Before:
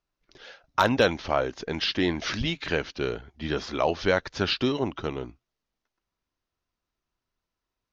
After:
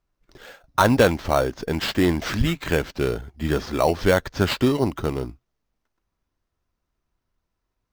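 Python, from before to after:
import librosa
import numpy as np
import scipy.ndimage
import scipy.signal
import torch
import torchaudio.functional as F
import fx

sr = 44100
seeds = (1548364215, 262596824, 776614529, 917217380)

p1 = fx.low_shelf(x, sr, hz=160.0, db=7.0)
p2 = fx.sample_hold(p1, sr, seeds[0], rate_hz=5000.0, jitter_pct=0)
y = p1 + (p2 * 10.0 ** (-3.5 / 20.0))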